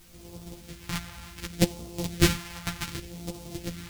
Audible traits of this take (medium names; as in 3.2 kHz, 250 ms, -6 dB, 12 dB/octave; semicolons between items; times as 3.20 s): a buzz of ramps at a fixed pitch in blocks of 256 samples; phasing stages 2, 0.67 Hz, lowest notch 390–1600 Hz; a quantiser's noise floor 10-bit, dither triangular; a shimmering, thickened sound